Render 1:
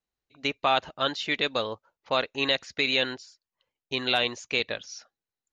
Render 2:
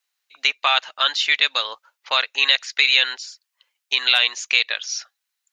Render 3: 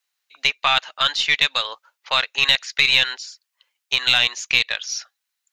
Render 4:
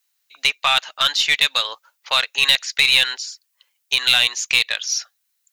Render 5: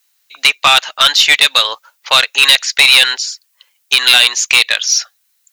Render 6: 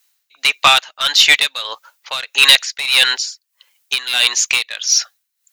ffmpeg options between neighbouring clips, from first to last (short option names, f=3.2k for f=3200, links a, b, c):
-filter_complex "[0:a]highpass=1.5k,asplit=2[a][b];[b]acompressor=threshold=-35dB:ratio=6,volume=2.5dB[c];[a][c]amix=inputs=2:normalize=0,volume=7.5dB"
-af "aeval=exprs='0.891*(cos(1*acos(clip(val(0)/0.891,-1,1)))-cos(1*PI/2))+0.0447*(cos(4*acos(clip(val(0)/0.891,-1,1)))-cos(4*PI/2))':c=same"
-filter_complex "[0:a]asplit=2[a][b];[b]acontrast=73,volume=-2dB[c];[a][c]amix=inputs=2:normalize=0,crystalizer=i=1.5:c=0,volume=-8.5dB"
-af "aeval=exprs='0.891*sin(PI/2*2*val(0)/0.891)':c=same"
-af "tremolo=f=1.6:d=0.82"